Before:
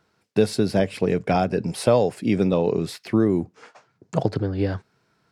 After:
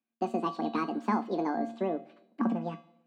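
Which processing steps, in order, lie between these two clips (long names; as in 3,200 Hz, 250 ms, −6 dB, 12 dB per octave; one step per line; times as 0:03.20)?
low-pass filter 1,900 Hz 12 dB per octave
parametric band 140 Hz +15 dB 1 octave
coupled-rooms reverb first 0.24 s, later 2 s, from −18 dB, DRR 7.5 dB
wrong playback speed 45 rpm record played at 78 rpm
low-shelf EQ 310 Hz −8 dB
mains-hum notches 50/100/150 Hz
tuned comb filter 230 Hz, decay 0.53 s, harmonics odd, mix 80%
multiband upward and downward expander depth 40%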